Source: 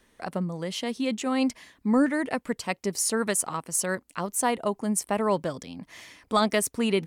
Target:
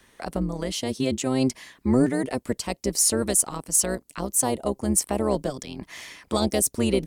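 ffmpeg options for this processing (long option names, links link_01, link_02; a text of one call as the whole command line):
ffmpeg -i in.wav -filter_complex "[0:a]acrossover=split=730|4100[link_01][link_02][link_03];[link_01]tremolo=f=130:d=0.919[link_04];[link_02]acompressor=threshold=-45dB:ratio=6[link_05];[link_04][link_05][link_03]amix=inputs=3:normalize=0,asoftclip=type=tanh:threshold=-14dB,volume=7dB" out.wav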